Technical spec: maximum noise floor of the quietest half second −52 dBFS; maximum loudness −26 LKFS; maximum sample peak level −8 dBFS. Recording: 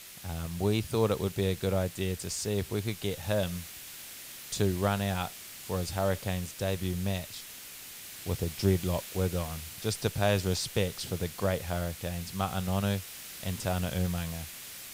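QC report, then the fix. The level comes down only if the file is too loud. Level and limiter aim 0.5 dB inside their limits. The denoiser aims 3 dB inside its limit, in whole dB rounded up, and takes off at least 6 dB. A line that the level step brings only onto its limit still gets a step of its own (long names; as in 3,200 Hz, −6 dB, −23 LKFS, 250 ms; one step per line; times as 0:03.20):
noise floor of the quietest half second −46 dBFS: out of spec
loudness −32.0 LKFS: in spec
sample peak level −13.5 dBFS: in spec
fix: broadband denoise 9 dB, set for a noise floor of −46 dBFS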